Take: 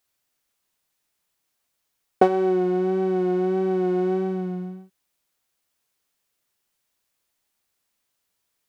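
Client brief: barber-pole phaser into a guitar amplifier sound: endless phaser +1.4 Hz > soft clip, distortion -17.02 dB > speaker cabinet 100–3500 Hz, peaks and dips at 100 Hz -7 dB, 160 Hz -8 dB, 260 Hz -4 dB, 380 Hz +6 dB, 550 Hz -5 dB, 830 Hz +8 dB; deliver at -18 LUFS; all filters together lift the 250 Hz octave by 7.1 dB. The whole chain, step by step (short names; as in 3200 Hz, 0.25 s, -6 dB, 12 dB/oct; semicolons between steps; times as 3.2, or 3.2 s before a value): bell 250 Hz +8.5 dB; endless phaser +1.4 Hz; soft clip -10.5 dBFS; speaker cabinet 100–3500 Hz, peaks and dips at 100 Hz -7 dB, 160 Hz -8 dB, 260 Hz -4 dB, 380 Hz +6 dB, 550 Hz -5 dB, 830 Hz +8 dB; gain +1.5 dB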